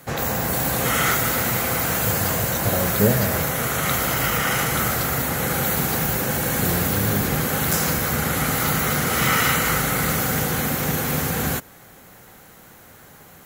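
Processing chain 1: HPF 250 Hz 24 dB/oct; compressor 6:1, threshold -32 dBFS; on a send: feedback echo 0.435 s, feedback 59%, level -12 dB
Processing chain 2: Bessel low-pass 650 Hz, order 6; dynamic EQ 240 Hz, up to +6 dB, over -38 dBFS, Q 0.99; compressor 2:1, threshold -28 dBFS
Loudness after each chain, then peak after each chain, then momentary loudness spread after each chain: -32.0, -28.5 LUFS; -15.0, -13.0 dBFS; 10, 2 LU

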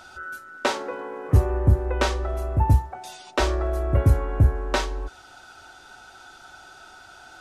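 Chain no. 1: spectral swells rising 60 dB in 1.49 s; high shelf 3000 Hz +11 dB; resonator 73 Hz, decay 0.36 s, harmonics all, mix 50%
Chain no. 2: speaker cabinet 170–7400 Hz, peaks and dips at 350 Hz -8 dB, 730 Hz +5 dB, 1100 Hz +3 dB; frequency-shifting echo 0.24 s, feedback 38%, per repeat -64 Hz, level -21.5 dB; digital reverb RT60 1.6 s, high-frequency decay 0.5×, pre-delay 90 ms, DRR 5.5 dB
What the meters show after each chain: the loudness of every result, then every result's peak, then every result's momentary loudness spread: -22.5, -27.5 LUFS; -4.0, -8.5 dBFS; 15, 18 LU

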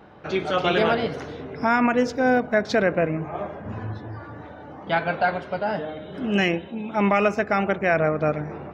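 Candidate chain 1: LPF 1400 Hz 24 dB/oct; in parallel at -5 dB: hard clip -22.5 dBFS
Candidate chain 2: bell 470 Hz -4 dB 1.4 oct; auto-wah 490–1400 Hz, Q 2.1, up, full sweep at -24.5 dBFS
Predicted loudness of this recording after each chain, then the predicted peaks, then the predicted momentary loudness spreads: -22.0, -31.0 LUFS; -8.0, -13.0 dBFS; 12, 18 LU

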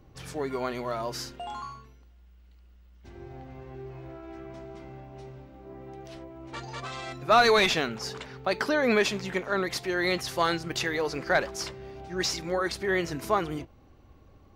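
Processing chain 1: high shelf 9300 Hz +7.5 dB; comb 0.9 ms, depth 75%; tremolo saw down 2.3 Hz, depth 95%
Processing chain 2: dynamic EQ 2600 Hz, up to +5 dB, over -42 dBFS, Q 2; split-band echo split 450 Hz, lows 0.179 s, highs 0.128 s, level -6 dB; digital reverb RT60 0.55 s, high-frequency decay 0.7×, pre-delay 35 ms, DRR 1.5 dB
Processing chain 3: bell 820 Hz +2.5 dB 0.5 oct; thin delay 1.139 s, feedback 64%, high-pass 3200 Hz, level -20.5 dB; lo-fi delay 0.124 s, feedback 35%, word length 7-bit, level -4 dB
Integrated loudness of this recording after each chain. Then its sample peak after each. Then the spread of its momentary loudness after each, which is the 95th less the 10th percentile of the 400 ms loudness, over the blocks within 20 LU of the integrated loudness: -31.5, -23.5, -26.0 LUFS; -9.5, -4.5, -7.0 dBFS; 19, 23, 22 LU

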